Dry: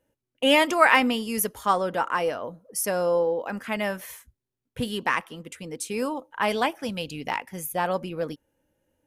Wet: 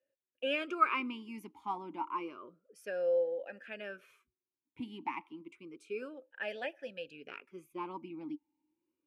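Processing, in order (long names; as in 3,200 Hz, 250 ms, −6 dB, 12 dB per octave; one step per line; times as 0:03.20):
parametric band 470 Hz −13.5 dB 0.24 octaves
notch filter 1,900 Hz, Q 28
formant filter swept between two vowels e-u 0.3 Hz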